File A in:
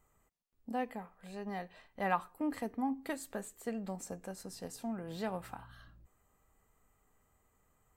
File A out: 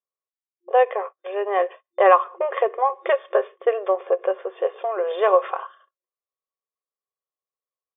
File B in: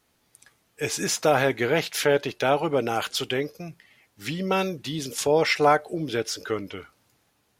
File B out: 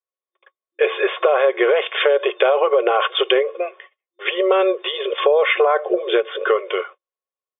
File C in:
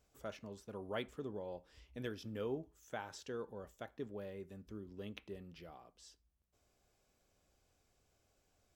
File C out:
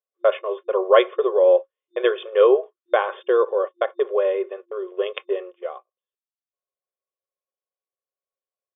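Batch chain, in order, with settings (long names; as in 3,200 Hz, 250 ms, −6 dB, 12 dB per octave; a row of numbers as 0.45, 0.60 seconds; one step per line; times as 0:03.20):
noise gate −52 dBFS, range −46 dB
comb filter 2.8 ms, depth 31%
hollow resonant body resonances 540/1,100 Hz, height 17 dB, ringing for 55 ms
brickwall limiter −12.5 dBFS
downward compressor, threshold −25 dBFS
brick-wall band-pass 350–3,600 Hz
every ending faded ahead of time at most 580 dB per second
normalise the peak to −1.5 dBFS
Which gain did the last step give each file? +16.0, +13.0, +20.0 decibels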